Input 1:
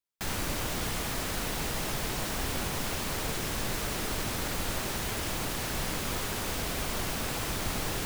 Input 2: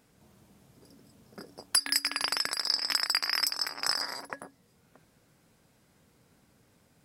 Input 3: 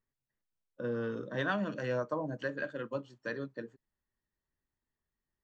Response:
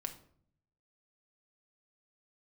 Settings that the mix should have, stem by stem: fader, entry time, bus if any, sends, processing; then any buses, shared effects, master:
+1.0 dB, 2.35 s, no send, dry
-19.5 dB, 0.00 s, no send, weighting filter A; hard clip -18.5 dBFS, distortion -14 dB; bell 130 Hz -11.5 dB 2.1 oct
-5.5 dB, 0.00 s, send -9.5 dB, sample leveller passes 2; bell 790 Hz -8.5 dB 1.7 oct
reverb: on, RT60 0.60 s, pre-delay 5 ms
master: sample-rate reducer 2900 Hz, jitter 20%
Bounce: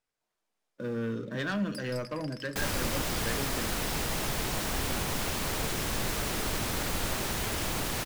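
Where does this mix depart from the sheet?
stem 3: send -9.5 dB -> -2 dB; master: missing sample-rate reducer 2900 Hz, jitter 20%

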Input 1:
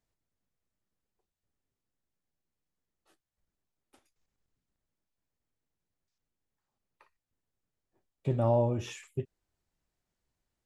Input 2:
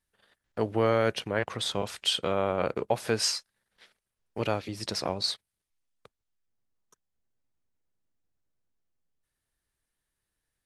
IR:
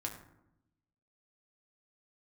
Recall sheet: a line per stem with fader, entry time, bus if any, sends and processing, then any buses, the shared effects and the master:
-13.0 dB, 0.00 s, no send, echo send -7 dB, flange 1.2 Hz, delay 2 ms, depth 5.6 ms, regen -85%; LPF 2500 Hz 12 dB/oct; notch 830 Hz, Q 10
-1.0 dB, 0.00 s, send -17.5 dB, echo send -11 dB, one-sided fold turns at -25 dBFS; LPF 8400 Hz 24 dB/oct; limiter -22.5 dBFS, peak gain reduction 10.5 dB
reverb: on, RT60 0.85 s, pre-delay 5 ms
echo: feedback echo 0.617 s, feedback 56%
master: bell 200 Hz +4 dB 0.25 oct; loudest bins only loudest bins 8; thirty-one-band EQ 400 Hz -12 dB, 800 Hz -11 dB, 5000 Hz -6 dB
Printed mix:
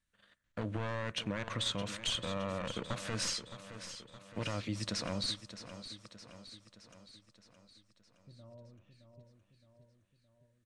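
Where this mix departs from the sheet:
stem 1 -13.0 dB -> -22.0 dB; master: missing loudest bins only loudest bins 8

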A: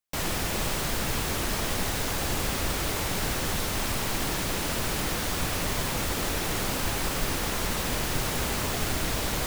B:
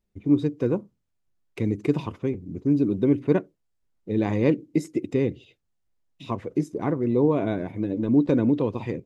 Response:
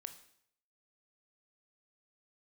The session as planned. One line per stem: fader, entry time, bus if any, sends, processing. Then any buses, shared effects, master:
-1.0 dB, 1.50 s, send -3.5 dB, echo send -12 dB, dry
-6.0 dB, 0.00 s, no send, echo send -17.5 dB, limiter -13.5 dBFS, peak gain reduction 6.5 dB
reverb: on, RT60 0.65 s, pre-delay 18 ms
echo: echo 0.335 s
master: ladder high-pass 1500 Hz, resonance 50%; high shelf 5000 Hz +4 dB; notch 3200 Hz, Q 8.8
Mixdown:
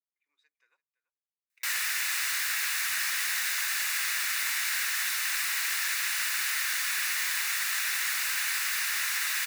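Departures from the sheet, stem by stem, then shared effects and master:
stem A -1.0 dB -> +5.5 dB; stem B -6.0 dB -> -18.0 dB

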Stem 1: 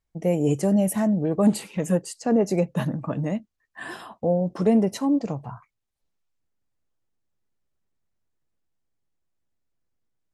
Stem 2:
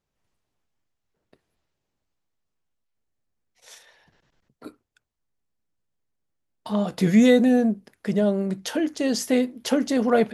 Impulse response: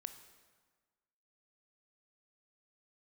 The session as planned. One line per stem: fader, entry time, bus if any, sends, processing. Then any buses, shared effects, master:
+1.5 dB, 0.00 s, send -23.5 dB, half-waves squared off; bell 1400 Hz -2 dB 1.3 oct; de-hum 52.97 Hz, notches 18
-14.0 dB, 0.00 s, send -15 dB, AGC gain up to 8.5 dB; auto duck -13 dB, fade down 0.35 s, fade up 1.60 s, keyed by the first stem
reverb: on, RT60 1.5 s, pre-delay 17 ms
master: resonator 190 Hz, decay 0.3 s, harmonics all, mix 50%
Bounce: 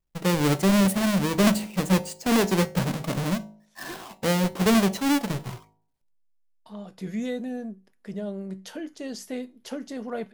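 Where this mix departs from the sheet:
stem 2: send -15 dB -> -21.5 dB; reverb return -9.0 dB

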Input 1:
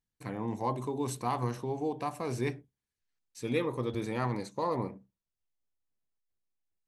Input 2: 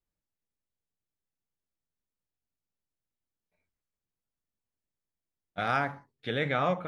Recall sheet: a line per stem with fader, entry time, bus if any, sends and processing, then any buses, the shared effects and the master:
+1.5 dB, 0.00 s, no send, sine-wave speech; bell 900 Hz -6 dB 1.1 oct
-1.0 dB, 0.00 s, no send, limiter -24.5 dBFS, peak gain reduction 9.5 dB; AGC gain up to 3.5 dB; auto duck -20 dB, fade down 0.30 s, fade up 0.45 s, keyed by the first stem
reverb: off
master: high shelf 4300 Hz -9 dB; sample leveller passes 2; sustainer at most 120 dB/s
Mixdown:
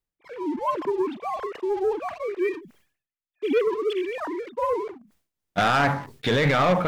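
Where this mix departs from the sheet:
stem 2 -1.0 dB -> +7.5 dB; master: missing high shelf 4300 Hz -9 dB

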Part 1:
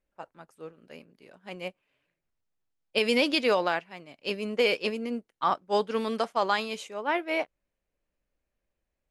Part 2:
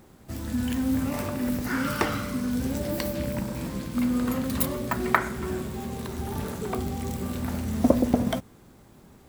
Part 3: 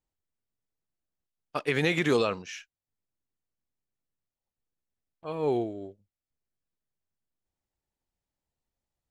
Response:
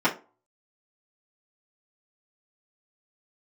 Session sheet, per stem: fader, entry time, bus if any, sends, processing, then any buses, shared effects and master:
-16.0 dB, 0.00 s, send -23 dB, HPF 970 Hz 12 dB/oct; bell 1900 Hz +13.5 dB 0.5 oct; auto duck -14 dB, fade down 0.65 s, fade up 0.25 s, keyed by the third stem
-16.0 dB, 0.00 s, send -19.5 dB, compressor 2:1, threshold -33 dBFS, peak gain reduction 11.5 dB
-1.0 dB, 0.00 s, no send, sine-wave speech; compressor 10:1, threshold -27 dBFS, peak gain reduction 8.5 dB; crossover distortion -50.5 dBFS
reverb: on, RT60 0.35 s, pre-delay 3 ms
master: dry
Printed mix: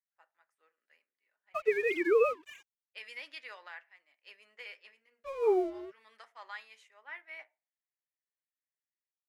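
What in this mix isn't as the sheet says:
stem 1 -16.0 dB -> -22.5 dB; stem 2: muted; stem 3: missing compressor 10:1, threshold -27 dBFS, peak gain reduction 8.5 dB

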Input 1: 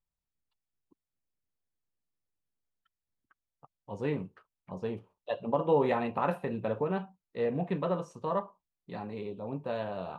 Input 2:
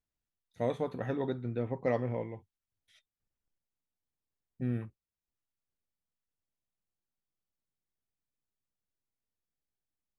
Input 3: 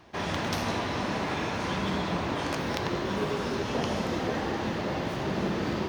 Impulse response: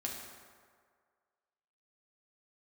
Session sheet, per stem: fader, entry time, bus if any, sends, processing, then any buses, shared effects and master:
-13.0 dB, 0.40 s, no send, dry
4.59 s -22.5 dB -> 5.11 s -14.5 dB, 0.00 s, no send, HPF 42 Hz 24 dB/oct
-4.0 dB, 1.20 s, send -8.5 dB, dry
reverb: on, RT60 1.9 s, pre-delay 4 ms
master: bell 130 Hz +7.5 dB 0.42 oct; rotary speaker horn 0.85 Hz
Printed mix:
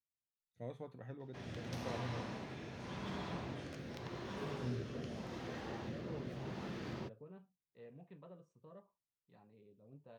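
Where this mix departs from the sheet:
stem 1 -13.0 dB -> -23.0 dB; stem 2 -22.5 dB -> -15.0 dB; stem 3 -4.0 dB -> -16.0 dB

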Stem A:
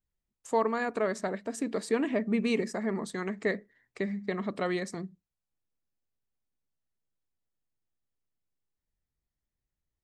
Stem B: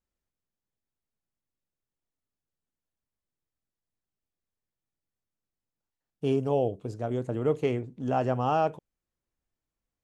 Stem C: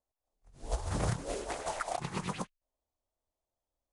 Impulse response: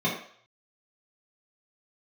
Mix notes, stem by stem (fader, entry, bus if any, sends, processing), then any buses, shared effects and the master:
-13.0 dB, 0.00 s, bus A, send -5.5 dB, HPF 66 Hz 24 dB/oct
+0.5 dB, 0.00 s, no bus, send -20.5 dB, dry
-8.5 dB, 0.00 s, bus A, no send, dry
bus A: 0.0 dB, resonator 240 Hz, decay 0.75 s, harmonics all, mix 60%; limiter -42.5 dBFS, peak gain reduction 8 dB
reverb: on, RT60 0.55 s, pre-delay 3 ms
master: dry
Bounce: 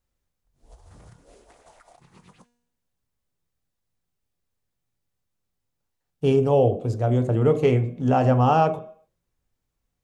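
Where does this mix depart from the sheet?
stem A: muted; stem B +0.5 dB -> +7.0 dB; master: extra low shelf 160 Hz +4.5 dB

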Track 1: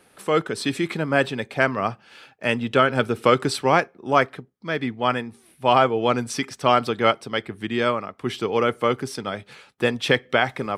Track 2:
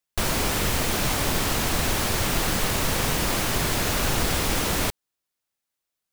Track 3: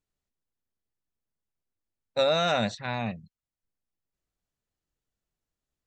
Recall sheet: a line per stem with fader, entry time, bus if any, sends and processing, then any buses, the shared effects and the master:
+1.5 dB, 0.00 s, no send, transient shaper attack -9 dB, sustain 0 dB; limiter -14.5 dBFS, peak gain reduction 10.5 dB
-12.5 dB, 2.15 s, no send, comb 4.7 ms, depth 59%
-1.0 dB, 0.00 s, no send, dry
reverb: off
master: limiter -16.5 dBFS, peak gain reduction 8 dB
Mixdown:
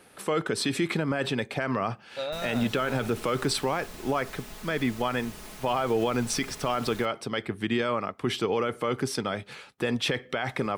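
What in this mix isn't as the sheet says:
stem 1: missing transient shaper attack -9 dB, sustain 0 dB; stem 2 -12.5 dB -> -21.0 dB; stem 3 -1.0 dB -> -9.5 dB

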